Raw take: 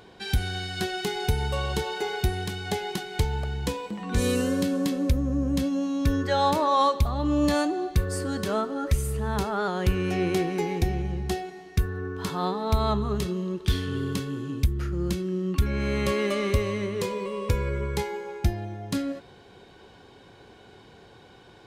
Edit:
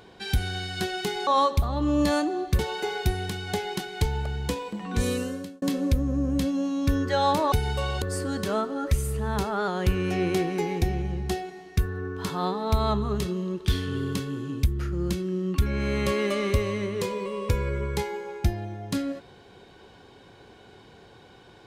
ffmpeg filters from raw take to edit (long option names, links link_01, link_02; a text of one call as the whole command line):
ffmpeg -i in.wav -filter_complex "[0:a]asplit=6[link_01][link_02][link_03][link_04][link_05][link_06];[link_01]atrim=end=1.272[link_07];[link_02]atrim=start=6.698:end=8.022[link_08];[link_03]atrim=start=1.768:end=4.8,asetpts=PTS-STARTPTS,afade=type=out:start_time=2.352:duration=0.68[link_09];[link_04]atrim=start=4.8:end=6.702,asetpts=PTS-STARTPTS,afade=type=in:duration=0.004:curve=hsin[link_10];[link_05]atrim=start=1.268:end=1.772[link_11];[link_06]atrim=start=8.018[link_12];[link_07][link_08]acrossfade=duration=0.004:curve1=hsin:curve2=hsin[link_13];[link_09][link_10]concat=n=2:v=0:a=1[link_14];[link_13][link_14]acrossfade=duration=0.004:curve1=hsin:curve2=hsin[link_15];[link_15][link_11]acrossfade=duration=0.004:curve1=hsin:curve2=hsin[link_16];[link_16][link_12]acrossfade=duration=0.004:curve1=hsin:curve2=hsin" out.wav